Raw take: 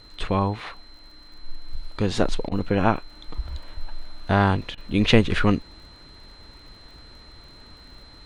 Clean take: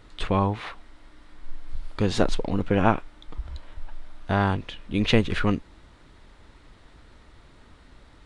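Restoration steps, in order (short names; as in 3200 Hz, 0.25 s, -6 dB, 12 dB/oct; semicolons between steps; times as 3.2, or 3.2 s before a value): de-click; notch 4100 Hz, Q 30; interpolate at 2.49/4.75, 24 ms; gain correction -3.5 dB, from 3.1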